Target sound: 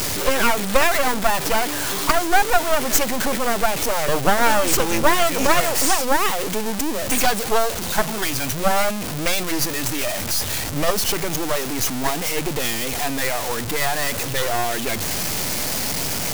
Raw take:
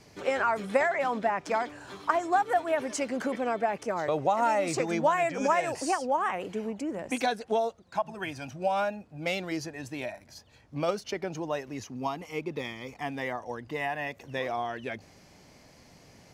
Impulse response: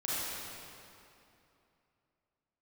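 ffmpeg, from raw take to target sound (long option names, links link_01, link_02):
-af "aeval=exprs='val(0)+0.5*0.0447*sgn(val(0))':channel_layout=same,highshelf=frequency=4800:gain=9.5,aeval=exprs='0.398*(cos(1*acos(clip(val(0)/0.398,-1,1)))-cos(1*PI/2))+0.141*(cos(6*acos(clip(val(0)/0.398,-1,1)))-cos(6*PI/2))':channel_layout=same,volume=3dB"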